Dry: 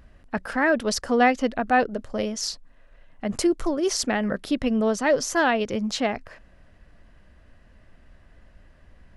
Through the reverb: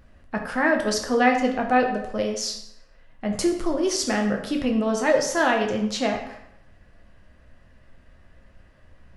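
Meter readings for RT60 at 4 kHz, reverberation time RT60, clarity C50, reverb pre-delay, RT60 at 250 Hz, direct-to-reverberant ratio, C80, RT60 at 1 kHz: 0.60 s, 0.75 s, 7.0 dB, 5 ms, 0.80 s, 1.5 dB, 9.5 dB, 0.75 s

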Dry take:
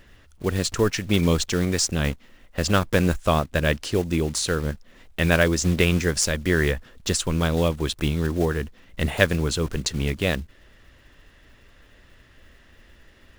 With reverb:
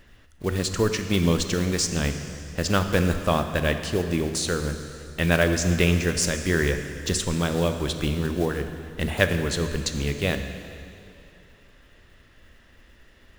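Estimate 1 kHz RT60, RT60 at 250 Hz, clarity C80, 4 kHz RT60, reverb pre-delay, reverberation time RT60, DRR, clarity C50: 2.7 s, 2.7 s, 8.5 dB, 2.5 s, 7 ms, 2.7 s, 7.0 dB, 8.0 dB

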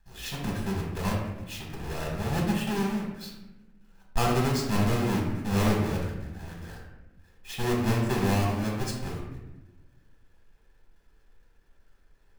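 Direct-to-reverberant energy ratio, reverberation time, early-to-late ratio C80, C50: −2.5 dB, 1.0 s, 5.5 dB, 2.5 dB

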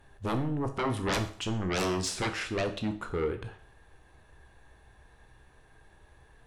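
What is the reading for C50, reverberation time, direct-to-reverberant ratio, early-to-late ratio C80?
12.0 dB, 0.50 s, 7.0 dB, 15.5 dB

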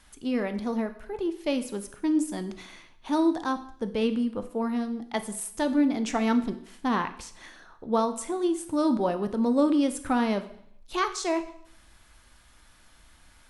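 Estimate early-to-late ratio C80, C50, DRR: 16.0 dB, 13.0 dB, 9.0 dB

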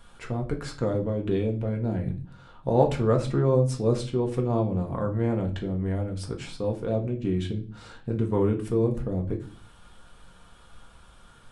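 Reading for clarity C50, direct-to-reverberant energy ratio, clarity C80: 13.0 dB, 1.5 dB, 17.5 dB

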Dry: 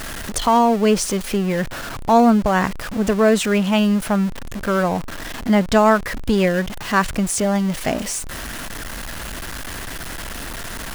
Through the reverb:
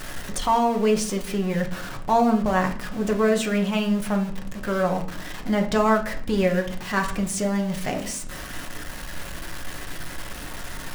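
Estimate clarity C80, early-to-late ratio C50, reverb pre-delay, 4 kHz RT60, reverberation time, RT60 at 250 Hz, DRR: 15.5 dB, 11.5 dB, 5 ms, 0.35 s, 0.55 s, 0.95 s, 2.5 dB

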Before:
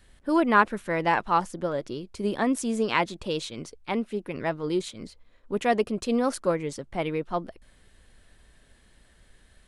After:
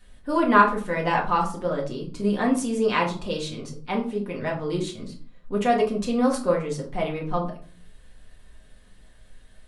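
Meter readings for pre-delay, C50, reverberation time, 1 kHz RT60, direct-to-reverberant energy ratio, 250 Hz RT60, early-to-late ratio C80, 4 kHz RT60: 4 ms, 9.5 dB, 0.40 s, 0.40 s, −2.5 dB, 0.70 s, 14.5 dB, 0.30 s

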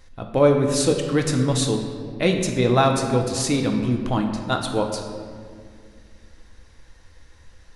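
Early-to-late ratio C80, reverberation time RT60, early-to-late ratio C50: 6.5 dB, 2.1 s, 5.0 dB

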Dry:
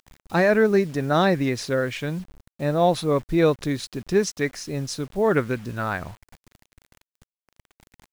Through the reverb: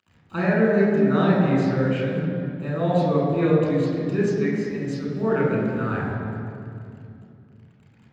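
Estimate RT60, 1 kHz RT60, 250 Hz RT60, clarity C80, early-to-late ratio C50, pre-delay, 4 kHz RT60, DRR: 2.6 s, 2.3 s, 3.7 s, 1.0 dB, −1.0 dB, 3 ms, 1.7 s, −5.5 dB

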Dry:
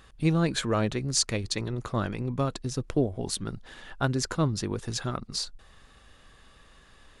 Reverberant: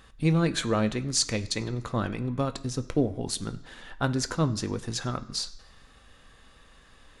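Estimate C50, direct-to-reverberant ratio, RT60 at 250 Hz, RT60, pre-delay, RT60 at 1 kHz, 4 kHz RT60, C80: 16.5 dB, 9.0 dB, 0.90 s, 1.0 s, 3 ms, 1.0 s, 0.95 s, 19.0 dB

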